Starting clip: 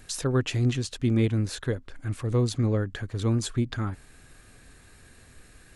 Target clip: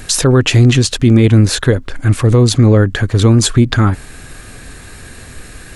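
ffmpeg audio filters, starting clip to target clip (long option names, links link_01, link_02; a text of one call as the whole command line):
ffmpeg -i in.wav -af "alimiter=level_in=20dB:limit=-1dB:release=50:level=0:latency=1,volume=-1dB" out.wav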